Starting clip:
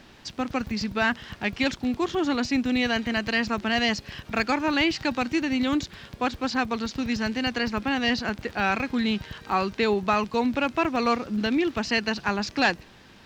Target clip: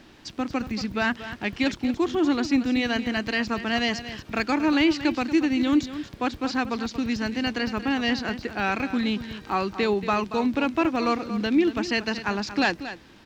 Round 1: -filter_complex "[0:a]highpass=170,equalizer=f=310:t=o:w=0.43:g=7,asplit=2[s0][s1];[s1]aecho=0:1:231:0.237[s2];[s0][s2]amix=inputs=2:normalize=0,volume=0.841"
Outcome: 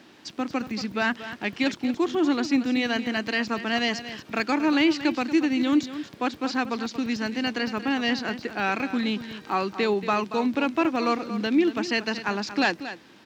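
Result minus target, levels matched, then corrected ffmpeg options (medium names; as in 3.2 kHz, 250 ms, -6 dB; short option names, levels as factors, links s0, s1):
125 Hz band -3.5 dB
-filter_complex "[0:a]equalizer=f=310:t=o:w=0.43:g=7,asplit=2[s0][s1];[s1]aecho=0:1:231:0.237[s2];[s0][s2]amix=inputs=2:normalize=0,volume=0.841"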